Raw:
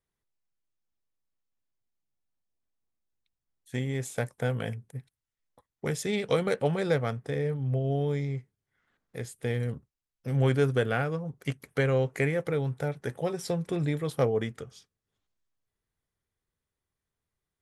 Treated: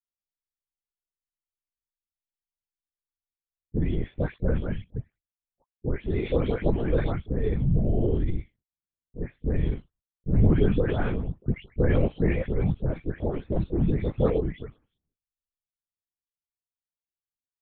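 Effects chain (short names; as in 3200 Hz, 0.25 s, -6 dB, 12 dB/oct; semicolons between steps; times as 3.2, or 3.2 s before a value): spectral delay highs late, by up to 0.341 s; gate -59 dBFS, range -29 dB; low-pass opened by the level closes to 880 Hz, open at -24 dBFS; low shelf 410 Hz +12 dB; LPC vocoder at 8 kHz whisper; gain -4 dB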